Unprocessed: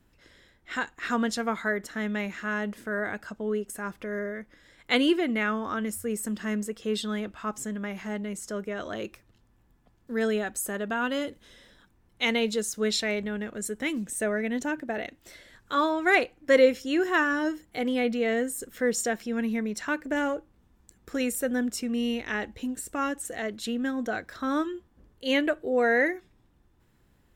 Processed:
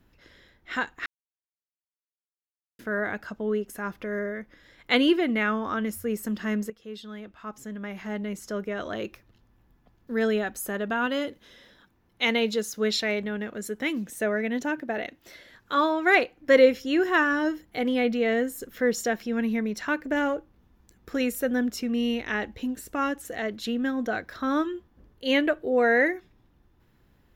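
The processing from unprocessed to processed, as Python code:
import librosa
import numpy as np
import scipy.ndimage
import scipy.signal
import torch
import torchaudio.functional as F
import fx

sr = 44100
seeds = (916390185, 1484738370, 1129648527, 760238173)

y = fx.low_shelf(x, sr, hz=78.0, db=-11.0, at=(11.06, 16.39))
y = fx.edit(y, sr, fx.silence(start_s=1.06, length_s=1.73),
    fx.fade_in_from(start_s=6.7, length_s=1.58, curve='qua', floor_db=-13.0), tone=tone)
y = fx.peak_eq(y, sr, hz=8400.0, db=-12.5, octaves=0.46)
y = y * librosa.db_to_amplitude(2.0)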